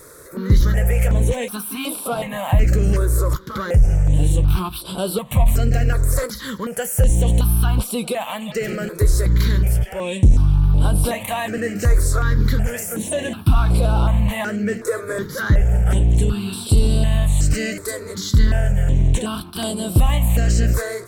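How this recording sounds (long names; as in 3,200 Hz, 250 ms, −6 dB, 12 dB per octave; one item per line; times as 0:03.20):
notches that jump at a steady rate 2.7 Hz 790–6,500 Hz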